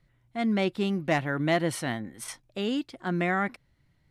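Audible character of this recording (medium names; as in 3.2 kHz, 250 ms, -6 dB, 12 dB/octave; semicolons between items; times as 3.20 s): noise floor -68 dBFS; spectral tilt -4.5 dB/octave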